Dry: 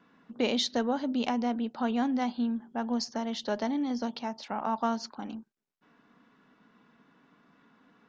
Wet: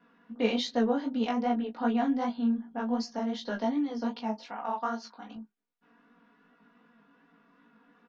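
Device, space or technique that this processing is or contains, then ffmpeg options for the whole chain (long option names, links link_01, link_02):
double-tracked vocal: -filter_complex "[0:a]bass=frequency=250:gain=-3,treble=frequency=4000:gain=-8,aecho=1:1:4.2:0.74,asettb=1/sr,asplit=3[link_01][link_02][link_03];[link_01]atrim=end=4.504[link_04];[link_02]atrim=start=4.5:end=5.36,asetpts=PTS-STARTPTS,afade=type=in:duration=0.004:curve=qsin,afade=type=out:start_time=0.856:duration=0.004:curve=qsin,lowshelf=frequency=410:gain=-11.5[link_05];[link_03]atrim=start=5.356[link_06];[link_04][link_05]acrossfade=duration=0.004:curve1=hsin:curve2=qsin[link_07];[link_07][link_06]acrossfade=duration=0.004:curve1=qsin:curve2=hsin,asplit=2[link_08][link_09];[link_09]adelay=18,volume=-7dB[link_10];[link_08][link_10]amix=inputs=2:normalize=0,flanger=delay=16.5:depth=4.7:speed=2.6"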